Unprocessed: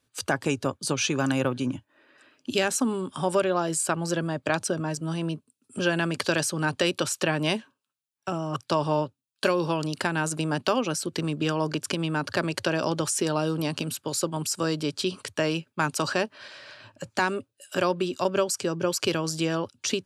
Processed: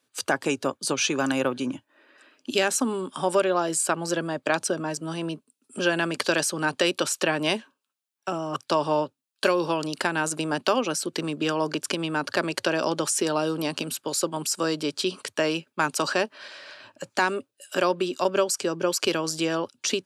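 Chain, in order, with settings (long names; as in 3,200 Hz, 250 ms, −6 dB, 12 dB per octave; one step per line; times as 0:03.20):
high-pass filter 240 Hz 12 dB per octave
level +2 dB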